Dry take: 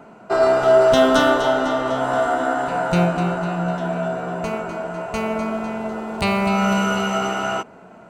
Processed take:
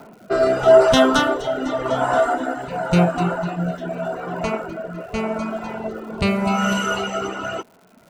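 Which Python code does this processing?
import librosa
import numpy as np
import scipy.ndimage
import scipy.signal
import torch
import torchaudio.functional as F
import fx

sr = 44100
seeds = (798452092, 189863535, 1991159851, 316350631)

y = fx.env_lowpass(x, sr, base_hz=2900.0, full_db=-15.5)
y = fx.dereverb_blind(y, sr, rt60_s=1.4)
y = fx.rotary(y, sr, hz=0.85)
y = fx.dmg_crackle(y, sr, seeds[0], per_s=180.0, level_db=-46.0)
y = F.gain(torch.from_numpy(y), 5.0).numpy()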